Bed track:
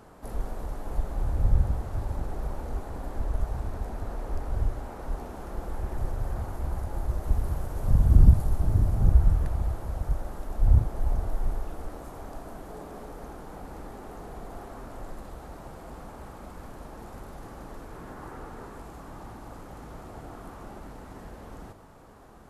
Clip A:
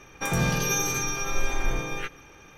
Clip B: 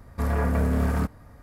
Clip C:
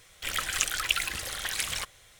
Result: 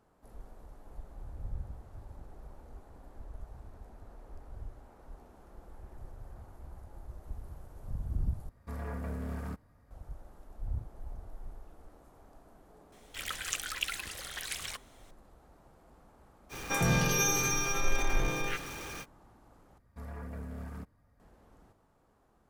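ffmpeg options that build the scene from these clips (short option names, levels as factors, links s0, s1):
-filter_complex "[2:a]asplit=2[s0][s1];[0:a]volume=0.141[s2];[1:a]aeval=exprs='val(0)+0.5*0.0178*sgn(val(0))':c=same[s3];[s1]flanger=delay=0.3:depth=1.3:regen=-66:speed=1.9:shape=triangular[s4];[s2]asplit=3[s5][s6][s7];[s5]atrim=end=8.494[s8];[s0]atrim=end=1.42,asetpts=PTS-STARTPTS,volume=0.188[s9];[s6]atrim=start=9.906:end=19.784[s10];[s4]atrim=end=1.42,asetpts=PTS-STARTPTS,volume=0.178[s11];[s7]atrim=start=21.196[s12];[3:a]atrim=end=2.19,asetpts=PTS-STARTPTS,volume=0.422,afade=t=in:d=0.004:c=hsin,afade=t=out:st=2.186:d=0.004:c=hsin,adelay=12920[s13];[s3]atrim=end=2.57,asetpts=PTS-STARTPTS,volume=0.668,afade=t=in:d=0.05,afade=t=out:st=2.52:d=0.05,adelay=16490[s14];[s8][s9]acrossfade=d=0.004:c1=hsin:c2=hsin[s15];[s15][s10]acrossfade=d=0.004:c1=hsin:c2=hsin[s16];[s16][s11]acrossfade=d=0.004:c1=hsin:c2=hsin[s17];[s17][s12]acrossfade=d=0.004:c1=hsin:c2=hsin[s18];[s18][s13][s14]amix=inputs=3:normalize=0"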